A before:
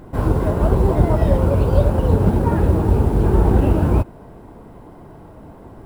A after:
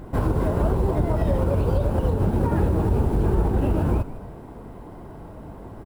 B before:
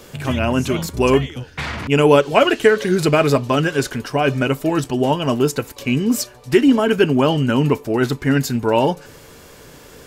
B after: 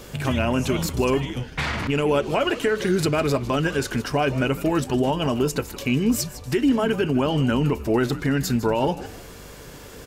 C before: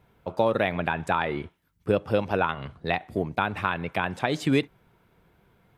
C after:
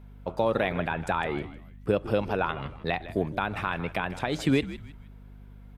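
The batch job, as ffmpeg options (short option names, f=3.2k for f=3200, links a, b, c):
-filter_complex "[0:a]alimiter=limit=-12.5dB:level=0:latency=1:release=166,aeval=exprs='val(0)+0.00501*(sin(2*PI*50*n/s)+sin(2*PI*2*50*n/s)/2+sin(2*PI*3*50*n/s)/3+sin(2*PI*4*50*n/s)/4+sin(2*PI*5*50*n/s)/5)':c=same,asplit=4[a][b][c][d];[b]adelay=156,afreqshift=-81,volume=-14.5dB[e];[c]adelay=312,afreqshift=-162,volume=-24.1dB[f];[d]adelay=468,afreqshift=-243,volume=-33.8dB[g];[a][e][f][g]amix=inputs=4:normalize=0"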